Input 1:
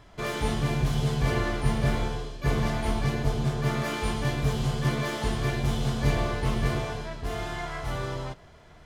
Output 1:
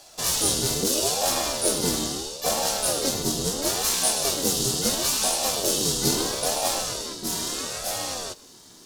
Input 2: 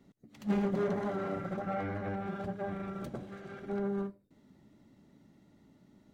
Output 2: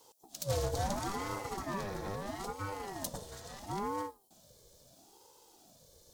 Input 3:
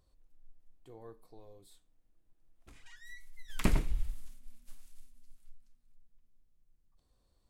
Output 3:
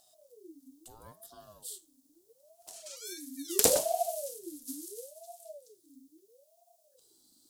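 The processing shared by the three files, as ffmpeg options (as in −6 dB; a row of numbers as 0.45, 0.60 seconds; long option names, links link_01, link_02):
-af "aexciter=amount=10.3:drive=7.3:freq=3800,aeval=exprs='1*(cos(1*acos(clip(val(0)/1,-1,1)))-cos(1*PI/2))+0.112*(cos(6*acos(clip(val(0)/1,-1,1)))-cos(6*PI/2))+0.0447*(cos(8*acos(clip(val(0)/1,-1,1)))-cos(8*PI/2))':channel_layout=same,aeval=exprs='val(0)*sin(2*PI*480*n/s+480*0.45/0.75*sin(2*PI*0.75*n/s))':channel_layout=same"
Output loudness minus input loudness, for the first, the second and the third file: +5.0, −2.5, +6.5 LU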